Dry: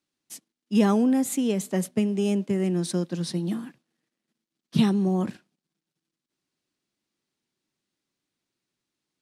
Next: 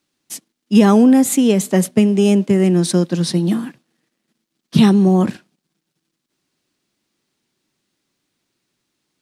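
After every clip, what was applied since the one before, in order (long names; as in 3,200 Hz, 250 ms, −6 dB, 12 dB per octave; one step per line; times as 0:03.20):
boost into a limiter +12 dB
level −1 dB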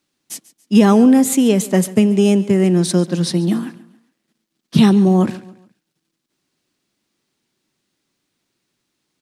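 repeating echo 140 ms, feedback 40%, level −19 dB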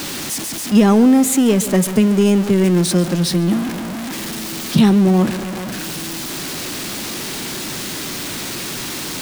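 converter with a step at zero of −18 dBFS
level −2 dB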